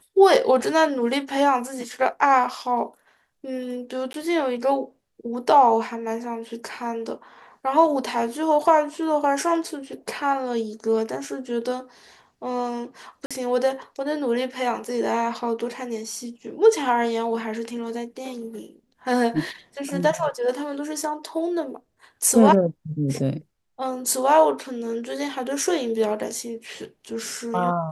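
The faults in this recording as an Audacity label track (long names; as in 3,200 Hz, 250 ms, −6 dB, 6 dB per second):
4.130000	4.140000	drop-out 12 ms
13.260000	13.310000	drop-out 46 ms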